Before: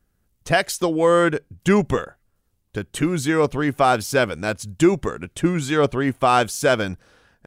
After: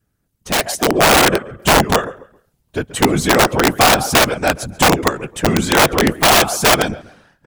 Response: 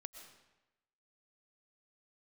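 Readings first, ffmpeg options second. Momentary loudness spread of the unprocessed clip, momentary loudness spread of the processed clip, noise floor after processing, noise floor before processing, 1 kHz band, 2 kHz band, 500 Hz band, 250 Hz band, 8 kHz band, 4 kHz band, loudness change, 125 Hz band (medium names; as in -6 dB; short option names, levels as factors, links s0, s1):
11 LU, 9 LU, -68 dBFS, -69 dBFS, +7.0 dB, +8.5 dB, +3.0 dB, +3.0 dB, +13.0 dB, +14.0 dB, +6.5 dB, +3.5 dB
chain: -filter_complex "[0:a]asplit=2[s0][s1];[s1]adelay=135,lowpass=f=4900:p=1,volume=0.119,asplit=2[s2][s3];[s3]adelay=135,lowpass=f=4900:p=1,volume=0.32,asplit=2[s4][s5];[s5]adelay=135,lowpass=f=4900:p=1,volume=0.32[s6];[s2][s4][s6]amix=inputs=3:normalize=0[s7];[s0][s7]amix=inputs=2:normalize=0,afftfilt=real='hypot(re,im)*cos(2*PI*random(0))':imag='hypot(re,im)*sin(2*PI*random(1))':win_size=512:overlap=0.75,lowshelf=f=67:g=-5,aeval=exprs='(mod(8.41*val(0)+1,2)-1)/8.41':c=same,adynamicequalizer=threshold=0.00708:dfrequency=740:dqfactor=1.7:tfrequency=740:tqfactor=1.7:attack=5:release=100:ratio=0.375:range=3:mode=boostabove:tftype=bell,dynaudnorm=f=120:g=13:m=2,volume=2.11"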